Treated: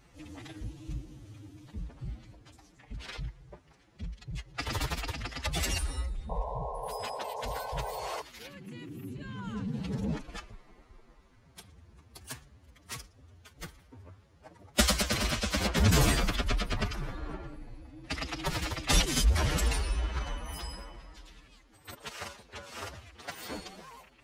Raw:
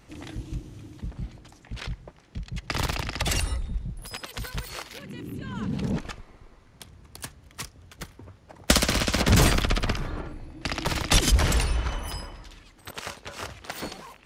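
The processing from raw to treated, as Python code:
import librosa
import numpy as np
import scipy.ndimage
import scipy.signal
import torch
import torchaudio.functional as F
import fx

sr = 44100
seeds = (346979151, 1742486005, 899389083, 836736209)

y = fx.stretch_vocoder(x, sr, factor=1.7)
y = fx.spec_paint(y, sr, seeds[0], shape='noise', start_s=6.29, length_s=1.93, low_hz=410.0, high_hz=1100.0, level_db=-33.0)
y = y * 10.0 ** (-5.0 / 20.0)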